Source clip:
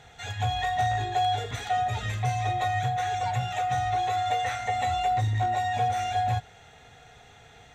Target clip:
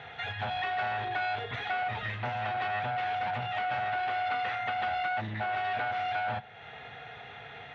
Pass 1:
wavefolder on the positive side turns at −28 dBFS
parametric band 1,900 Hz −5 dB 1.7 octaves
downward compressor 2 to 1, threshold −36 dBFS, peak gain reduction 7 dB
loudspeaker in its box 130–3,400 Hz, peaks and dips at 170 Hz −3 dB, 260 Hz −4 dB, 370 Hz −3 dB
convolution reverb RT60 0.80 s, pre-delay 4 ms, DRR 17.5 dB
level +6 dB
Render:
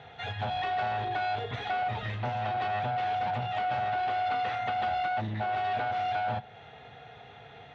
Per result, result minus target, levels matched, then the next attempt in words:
2,000 Hz band −4.5 dB; downward compressor: peak gain reduction −4 dB
wavefolder on the positive side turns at −28 dBFS
parametric band 1,900 Hz +3.5 dB 1.7 octaves
downward compressor 2 to 1, threshold −36 dBFS, peak gain reduction 8 dB
loudspeaker in its box 130–3,400 Hz, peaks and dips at 170 Hz −3 dB, 260 Hz −4 dB, 370 Hz −3 dB
convolution reverb RT60 0.80 s, pre-delay 4 ms, DRR 17.5 dB
level +6 dB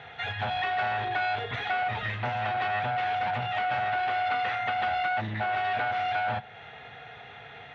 downward compressor: peak gain reduction −3 dB
wavefolder on the positive side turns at −28 dBFS
parametric band 1,900 Hz +3.5 dB 1.7 octaves
downward compressor 2 to 1, threshold −42.5 dBFS, peak gain reduction 11 dB
loudspeaker in its box 130–3,400 Hz, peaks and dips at 170 Hz −3 dB, 260 Hz −4 dB, 370 Hz −3 dB
convolution reverb RT60 0.80 s, pre-delay 4 ms, DRR 17.5 dB
level +6 dB

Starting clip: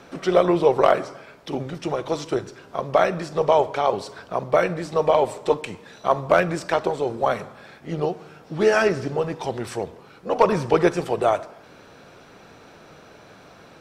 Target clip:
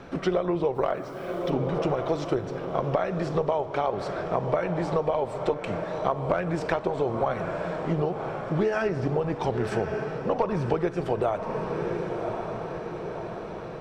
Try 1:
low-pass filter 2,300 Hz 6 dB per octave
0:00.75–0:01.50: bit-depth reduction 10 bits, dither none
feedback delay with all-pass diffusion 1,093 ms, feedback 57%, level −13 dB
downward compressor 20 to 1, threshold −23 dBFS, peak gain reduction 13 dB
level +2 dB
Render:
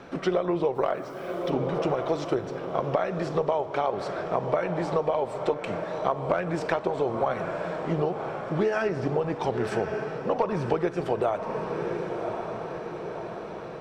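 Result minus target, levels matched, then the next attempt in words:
125 Hz band −2.5 dB
low-pass filter 2,300 Hz 6 dB per octave
low-shelf EQ 110 Hz +10 dB
0:00.75–0:01.50: bit-depth reduction 10 bits, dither none
feedback delay with all-pass diffusion 1,093 ms, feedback 57%, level −13 dB
downward compressor 20 to 1, threshold −23 dBFS, peak gain reduction 13.5 dB
level +2 dB

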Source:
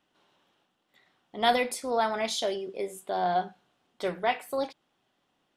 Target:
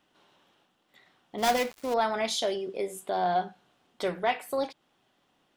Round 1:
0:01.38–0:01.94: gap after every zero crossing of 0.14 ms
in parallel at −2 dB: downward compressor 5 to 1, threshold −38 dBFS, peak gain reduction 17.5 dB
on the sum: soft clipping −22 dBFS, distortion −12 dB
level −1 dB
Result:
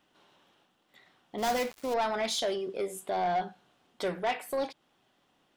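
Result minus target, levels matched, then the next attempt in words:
soft clipping: distortion +15 dB
0:01.38–0:01.94: gap after every zero crossing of 0.14 ms
in parallel at −2 dB: downward compressor 5 to 1, threshold −38 dBFS, peak gain reduction 17.5 dB
on the sum: soft clipping −10.5 dBFS, distortion −27 dB
level −1 dB

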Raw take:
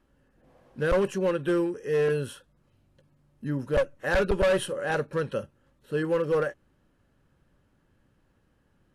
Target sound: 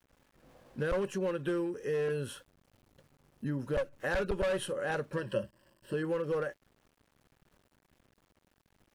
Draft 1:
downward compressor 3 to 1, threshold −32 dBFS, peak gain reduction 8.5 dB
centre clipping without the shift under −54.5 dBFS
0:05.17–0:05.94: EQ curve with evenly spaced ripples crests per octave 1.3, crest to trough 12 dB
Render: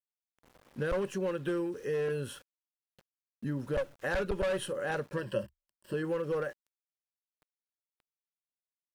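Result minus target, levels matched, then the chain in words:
centre clipping without the shift: distortion +5 dB
downward compressor 3 to 1, threshold −32 dBFS, peak gain reduction 8.5 dB
centre clipping without the shift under −62 dBFS
0:05.17–0:05.94: EQ curve with evenly spaced ripples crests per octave 1.3, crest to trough 12 dB

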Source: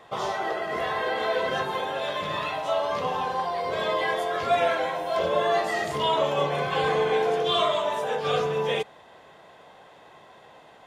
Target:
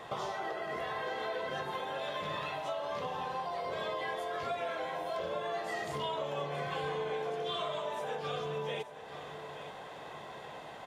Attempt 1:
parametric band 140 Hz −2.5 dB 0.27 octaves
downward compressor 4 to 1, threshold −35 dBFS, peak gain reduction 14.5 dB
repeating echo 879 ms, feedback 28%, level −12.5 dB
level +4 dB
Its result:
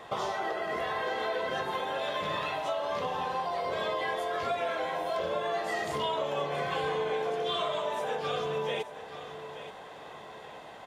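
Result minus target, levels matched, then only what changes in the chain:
downward compressor: peak gain reduction −5 dB; 125 Hz band −4.0 dB
change: parametric band 140 Hz +3.5 dB 0.27 octaves
change: downward compressor 4 to 1, threshold −41.5 dBFS, peak gain reduction 19.5 dB

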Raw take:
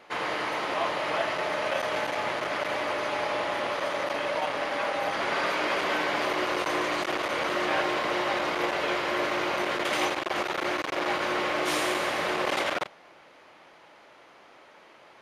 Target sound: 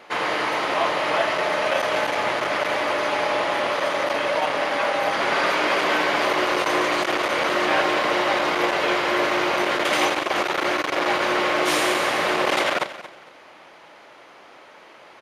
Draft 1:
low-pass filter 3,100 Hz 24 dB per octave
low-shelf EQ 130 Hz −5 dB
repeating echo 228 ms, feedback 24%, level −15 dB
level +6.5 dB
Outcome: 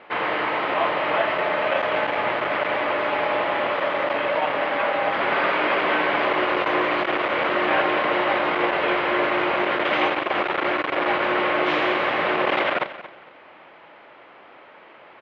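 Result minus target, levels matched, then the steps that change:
4,000 Hz band −4.0 dB
remove: low-pass filter 3,100 Hz 24 dB per octave

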